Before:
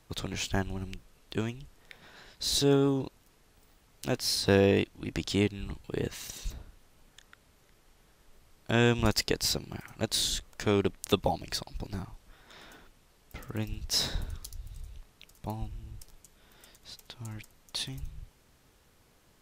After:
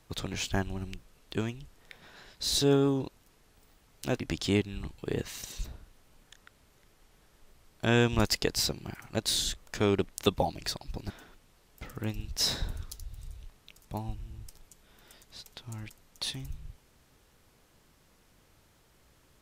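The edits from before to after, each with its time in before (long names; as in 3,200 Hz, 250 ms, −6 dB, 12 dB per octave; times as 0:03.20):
0:04.20–0:05.06: remove
0:11.96–0:12.63: remove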